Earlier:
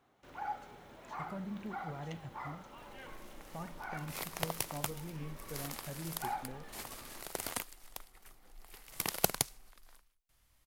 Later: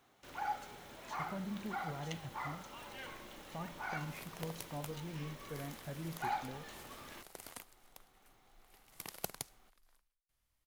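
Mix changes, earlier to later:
first sound: add treble shelf 2.4 kHz +10 dB; second sound -11.5 dB

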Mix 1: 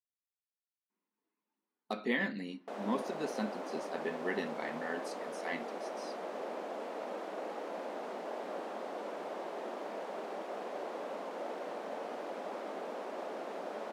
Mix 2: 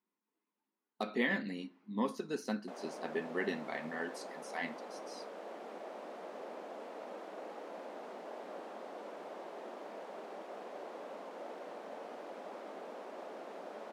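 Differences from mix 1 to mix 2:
speech: entry -0.90 s; background -5.5 dB

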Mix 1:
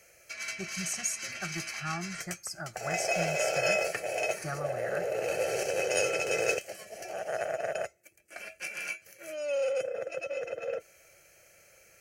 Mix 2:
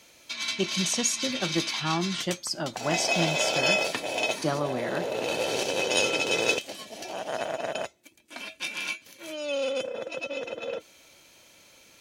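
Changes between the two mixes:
speech: remove static phaser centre 1.2 kHz, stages 4; master: remove static phaser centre 980 Hz, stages 6

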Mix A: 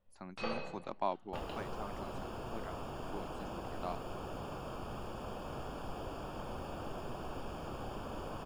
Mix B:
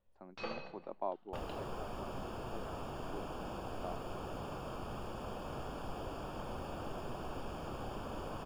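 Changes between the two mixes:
speech: add band-pass filter 480 Hz, Q 1.2; first sound: send -6.5 dB

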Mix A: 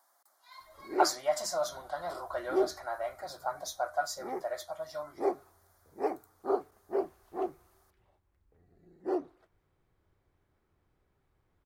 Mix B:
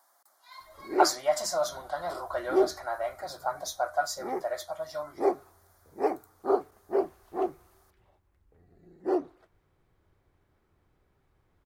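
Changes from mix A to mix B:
speech +3.5 dB; background +4.5 dB

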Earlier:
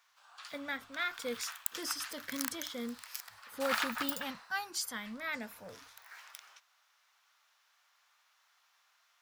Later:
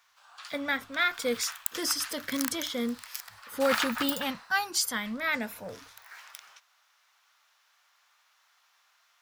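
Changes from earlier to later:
speech +9.0 dB; background +4.0 dB

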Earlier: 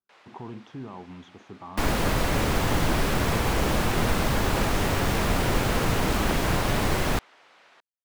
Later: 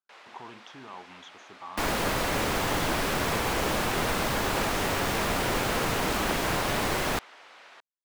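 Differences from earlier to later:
speech: add tilt shelf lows -8 dB, about 850 Hz; first sound +5.5 dB; master: add bass shelf 210 Hz -10.5 dB

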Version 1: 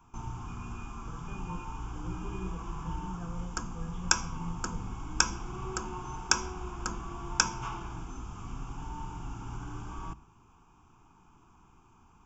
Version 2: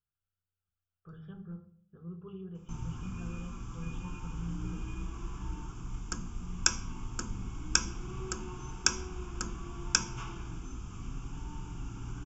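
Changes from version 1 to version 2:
background: entry +2.55 s; master: add peaking EQ 850 Hz -10.5 dB 1.2 oct

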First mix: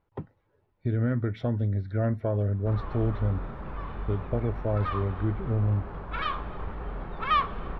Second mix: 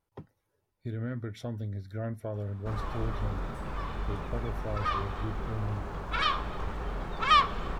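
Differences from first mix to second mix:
speech -9.0 dB; master: remove distance through air 360 m

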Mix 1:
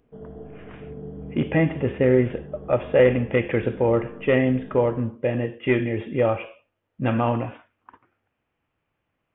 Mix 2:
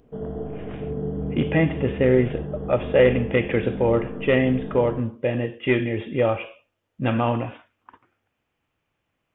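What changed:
speech: remove low-pass 2.7 kHz 12 dB/octave; background +8.5 dB

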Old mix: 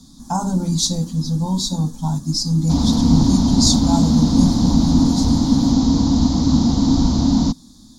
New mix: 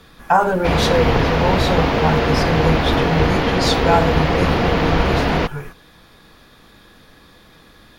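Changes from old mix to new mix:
background: entry -2.05 s; master: remove FFT filter 140 Hz 0 dB, 260 Hz +12 dB, 420 Hz -20 dB, 930 Hz -7 dB, 1.7 kHz -26 dB, 2.7 kHz -26 dB, 3.8 kHz +1 dB, 7 kHz +14 dB, 14 kHz -5 dB

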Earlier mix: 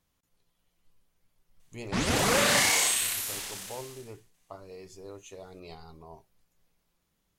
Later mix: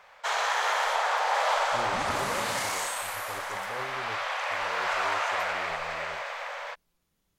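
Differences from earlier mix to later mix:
first sound: unmuted; second sound -10.0 dB

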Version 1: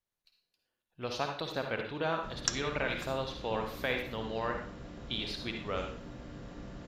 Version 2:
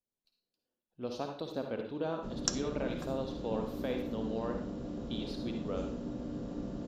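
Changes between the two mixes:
speech -7.0 dB; master: add ten-band graphic EQ 250 Hz +10 dB, 500 Hz +5 dB, 2 kHz -9 dB

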